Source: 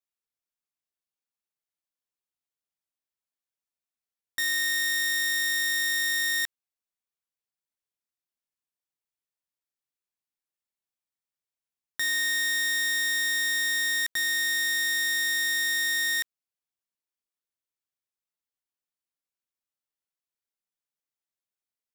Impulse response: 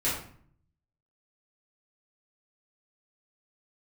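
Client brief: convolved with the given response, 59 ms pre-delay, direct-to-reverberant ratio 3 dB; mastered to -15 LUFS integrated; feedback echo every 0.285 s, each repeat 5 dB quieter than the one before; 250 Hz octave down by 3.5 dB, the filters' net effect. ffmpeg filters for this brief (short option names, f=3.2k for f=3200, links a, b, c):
-filter_complex "[0:a]equalizer=f=250:t=o:g=-4.5,aecho=1:1:285|570|855|1140|1425|1710|1995:0.562|0.315|0.176|0.0988|0.0553|0.031|0.0173,asplit=2[a][b];[1:a]atrim=start_sample=2205,adelay=59[c];[b][c]afir=irnorm=-1:irlink=0,volume=-12.5dB[d];[a][d]amix=inputs=2:normalize=0,volume=11.5dB"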